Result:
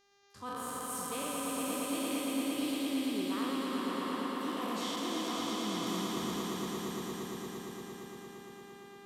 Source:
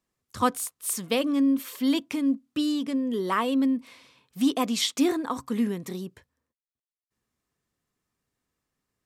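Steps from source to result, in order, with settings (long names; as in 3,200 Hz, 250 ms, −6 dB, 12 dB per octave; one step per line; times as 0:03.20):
peak hold with a decay on every bin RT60 2.55 s
reversed playback
downward compressor 10 to 1, threshold −31 dBFS, peak gain reduction 17 dB
reversed playback
hum with harmonics 400 Hz, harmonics 17, −64 dBFS −3 dB per octave
echo that builds up and dies away 115 ms, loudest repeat 5, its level −5.5 dB
level −6 dB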